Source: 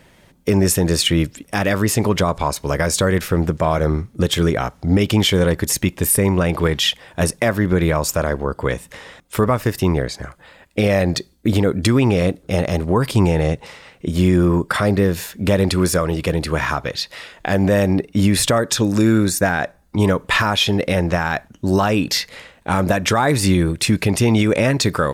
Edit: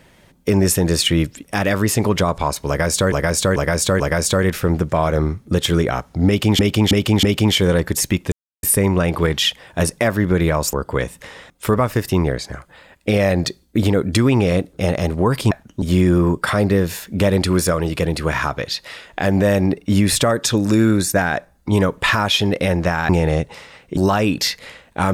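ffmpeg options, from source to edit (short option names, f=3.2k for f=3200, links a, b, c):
-filter_complex "[0:a]asplit=13[a][b][c][d][e][f][g][h][i][j][k][l][m];[a]atrim=end=3.122[n];[b]atrim=start=2.678:end=3.122[o];[c]atrim=start=2.678:end=3.122[p];[d]atrim=start=2.678:end=5.272[q];[e]atrim=start=4.948:end=5.272[r];[f]atrim=start=4.948:end=5.272[s];[g]atrim=start=4.948:end=6.04,asetpts=PTS-STARTPTS,afade=t=out:st=1.088:d=0.004:c=hsin,apad=pad_dur=0.31[t];[h]atrim=start=6.04:end=8.142,asetpts=PTS-STARTPTS,afade=t=in:d=0.004:c=hsin[u];[i]atrim=start=8.428:end=13.212[v];[j]atrim=start=21.358:end=21.672[w];[k]atrim=start=14.088:end=21.362[x];[l]atrim=start=13.208:end=14.092[y];[m]atrim=start=21.668[z];[n][o]acrossfade=d=0.004:c1=hsin:c2=hsin[aa];[aa][p]acrossfade=d=0.004:c1=hsin:c2=hsin[ab];[ab][q]acrossfade=d=0.004:c1=hsin:c2=hsin[ac];[ac][r]acrossfade=d=0.004:c1=hsin:c2=hsin[ad];[ad][s]acrossfade=d=0.004:c1=hsin:c2=hsin[ae];[t][u]concat=n=2:v=0:a=1[af];[ae][af]acrossfade=d=0.004:c1=hsin:c2=hsin[ag];[ag][v]acrossfade=d=0.004:c1=hsin:c2=hsin[ah];[ah][w]acrossfade=d=0.004:c1=hsin:c2=hsin[ai];[ai][x]acrossfade=d=0.004:c1=hsin:c2=hsin[aj];[aj][y]acrossfade=d=0.004:c1=hsin:c2=hsin[ak];[ak][z]acrossfade=d=0.004:c1=hsin:c2=hsin"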